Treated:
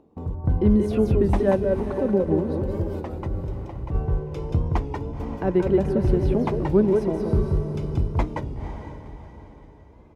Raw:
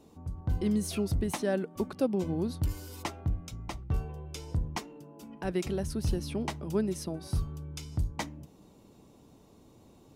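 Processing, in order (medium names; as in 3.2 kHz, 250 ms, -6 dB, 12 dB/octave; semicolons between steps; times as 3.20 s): upward compressor, threshold -37 dBFS; tilt shelf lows +9 dB, about 1.5 kHz; multi-tap echo 179/181 ms -7.5/-5.5 dB; 1.51–3.95 s: tremolo 4.8 Hz, depth 65%; gate with hold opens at -27 dBFS; tone controls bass -5 dB, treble -10 dB; echo that smears into a reverb 498 ms, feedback 44%, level -9 dB; warped record 33 1/3 rpm, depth 100 cents; trim +4 dB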